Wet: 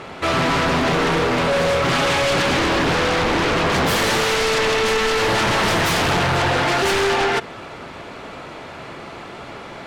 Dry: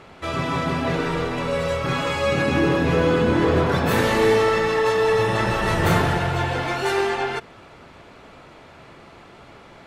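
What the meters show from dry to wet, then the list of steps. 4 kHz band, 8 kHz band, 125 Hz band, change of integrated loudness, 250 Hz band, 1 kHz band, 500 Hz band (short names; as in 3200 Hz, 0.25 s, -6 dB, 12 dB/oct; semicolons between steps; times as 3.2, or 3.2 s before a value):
+9.0 dB, +10.0 dB, -1.0 dB, +3.0 dB, +0.5 dB, +4.0 dB, +1.0 dB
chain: low shelf 110 Hz -7.5 dB; in parallel at -4 dB: sine folder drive 16 dB, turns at -7 dBFS; on the sum: Doppler distortion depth 0.38 ms; gain -6 dB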